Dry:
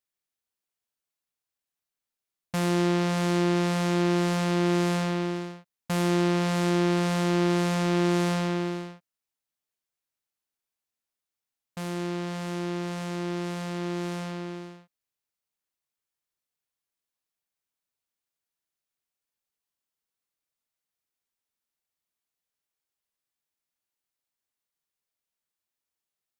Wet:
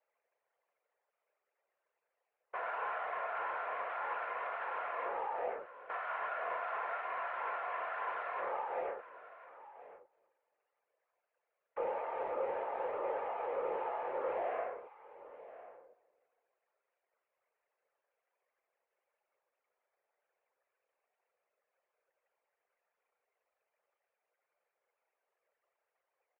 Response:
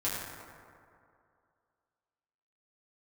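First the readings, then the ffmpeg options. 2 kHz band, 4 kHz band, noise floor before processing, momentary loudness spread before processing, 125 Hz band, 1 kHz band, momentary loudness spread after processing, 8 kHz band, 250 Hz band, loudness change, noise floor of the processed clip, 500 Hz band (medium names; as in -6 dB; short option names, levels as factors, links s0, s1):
-7.0 dB, under -20 dB, under -85 dBFS, 11 LU, under -40 dB, -3.5 dB, 17 LU, under -35 dB, -33.5 dB, -12.0 dB, under -85 dBFS, -9.0 dB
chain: -filter_complex "[0:a]aeval=exprs='val(0)+0.5*0.0106*sgn(val(0))':c=same,anlmdn=0.398,aeval=exprs='0.0282*(abs(mod(val(0)/0.0282+3,4)-2)-1)':c=same,asplit=2[s0][s1];[s1]aecho=0:1:1051:0.158[s2];[s0][s2]amix=inputs=2:normalize=0,highpass=f=160:t=q:w=0.5412,highpass=f=160:t=q:w=1.307,lowpass=f=2100:t=q:w=0.5176,lowpass=f=2100:t=q:w=0.7071,lowpass=f=2100:t=q:w=1.932,afreqshift=340,asplit=2[s3][s4];[s4]adelay=336,lowpass=f=1800:p=1,volume=0.0794,asplit=2[s5][s6];[s6]adelay=336,lowpass=f=1800:p=1,volume=0.36,asplit=2[s7][s8];[s8]adelay=336,lowpass=f=1800:p=1,volume=0.36[s9];[s5][s7][s9]amix=inputs=3:normalize=0[s10];[s3][s10]amix=inputs=2:normalize=0,afftfilt=real='hypot(re,im)*cos(2*PI*random(0))':imag='hypot(re,im)*sin(2*PI*random(1))':win_size=512:overlap=0.75,volume=1.78"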